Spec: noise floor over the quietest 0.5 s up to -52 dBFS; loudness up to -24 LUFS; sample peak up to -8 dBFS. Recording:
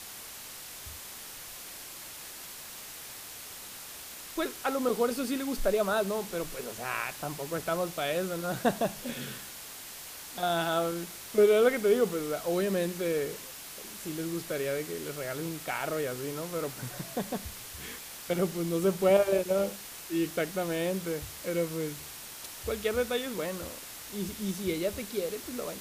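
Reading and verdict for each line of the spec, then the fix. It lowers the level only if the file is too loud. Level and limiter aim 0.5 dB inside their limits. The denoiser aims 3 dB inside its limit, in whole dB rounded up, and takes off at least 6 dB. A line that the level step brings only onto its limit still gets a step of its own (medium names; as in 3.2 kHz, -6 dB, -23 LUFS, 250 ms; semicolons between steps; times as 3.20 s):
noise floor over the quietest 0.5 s -44 dBFS: fail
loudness -32.0 LUFS: pass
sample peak -12.0 dBFS: pass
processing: noise reduction 11 dB, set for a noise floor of -44 dBFS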